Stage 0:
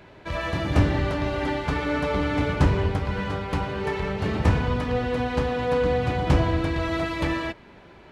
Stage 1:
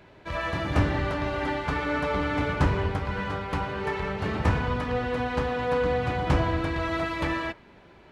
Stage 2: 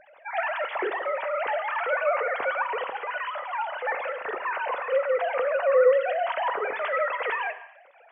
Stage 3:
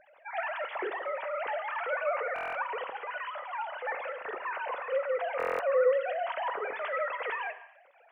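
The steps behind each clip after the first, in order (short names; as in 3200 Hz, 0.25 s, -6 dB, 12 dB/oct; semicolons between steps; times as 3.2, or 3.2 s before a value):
dynamic EQ 1300 Hz, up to +5 dB, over -38 dBFS, Q 0.74; gain -4 dB
sine-wave speech; non-linear reverb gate 0.33 s falling, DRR 10 dB
stuck buffer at 2.34/5.38, samples 1024, times 8; gain -6 dB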